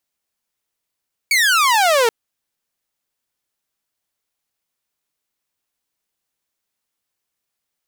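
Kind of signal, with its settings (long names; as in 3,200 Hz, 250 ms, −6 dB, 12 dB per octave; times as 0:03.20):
single falling chirp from 2,300 Hz, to 440 Hz, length 0.78 s saw, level −9.5 dB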